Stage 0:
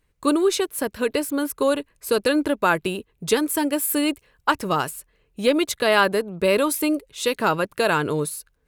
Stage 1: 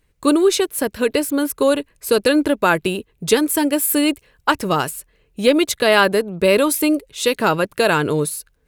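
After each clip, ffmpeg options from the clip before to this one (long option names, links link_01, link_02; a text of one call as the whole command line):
ffmpeg -i in.wav -af "equalizer=frequency=1100:width=1.5:gain=-3,volume=5dB" out.wav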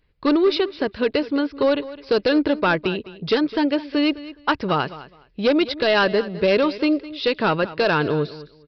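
ffmpeg -i in.wav -af "aresample=11025,asoftclip=type=hard:threshold=-10.5dB,aresample=44100,aecho=1:1:208|416:0.15|0.0284,volume=-2dB" out.wav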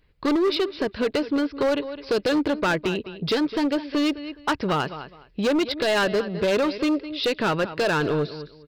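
ffmpeg -i in.wav -filter_complex "[0:a]asplit=2[link_01][link_02];[link_02]acompressor=threshold=-27dB:ratio=5,volume=1dB[link_03];[link_01][link_03]amix=inputs=2:normalize=0,volume=14dB,asoftclip=hard,volume=-14dB,volume=-4dB" out.wav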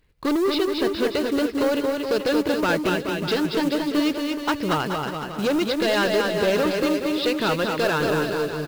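ffmpeg -i in.wav -filter_complex "[0:a]acrusher=bits=4:mode=log:mix=0:aa=0.000001,asplit=2[link_01][link_02];[link_02]aecho=0:1:230|425.5|591.7|732.9|853:0.631|0.398|0.251|0.158|0.1[link_03];[link_01][link_03]amix=inputs=2:normalize=0,volume=-1dB" out.wav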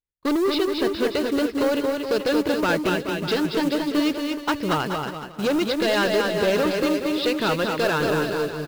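ffmpeg -i in.wav -af "agate=range=-33dB:threshold=-25dB:ratio=3:detection=peak" out.wav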